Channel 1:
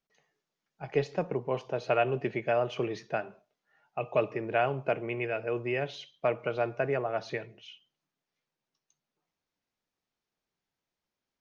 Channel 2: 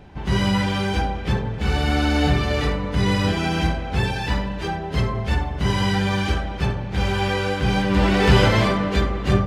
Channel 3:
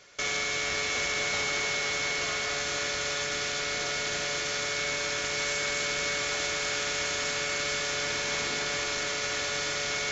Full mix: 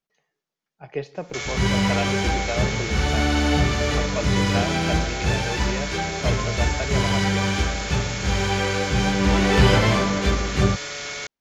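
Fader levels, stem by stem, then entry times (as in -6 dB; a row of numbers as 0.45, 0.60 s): -1.0, -1.0, -1.0 dB; 0.00, 1.30, 1.15 s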